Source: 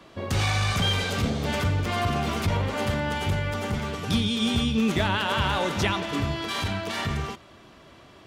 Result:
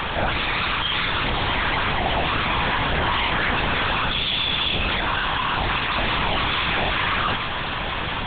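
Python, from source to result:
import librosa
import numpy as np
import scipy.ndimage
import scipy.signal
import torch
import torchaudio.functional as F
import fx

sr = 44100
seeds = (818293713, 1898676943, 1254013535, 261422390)

y = scipy.signal.sosfilt(scipy.signal.butter(2, 810.0, 'highpass', fs=sr, output='sos'), x)
y = fx.over_compress(y, sr, threshold_db=-34.0, ratio=-0.5)
y = fx.fuzz(y, sr, gain_db=53.0, gate_db=-58.0)
y = fx.pitch_keep_formants(y, sr, semitones=10.0)
y = fx.lpc_vocoder(y, sr, seeds[0], excitation='whisper', order=8)
y = y * 10.0 ** (-6.5 / 20.0)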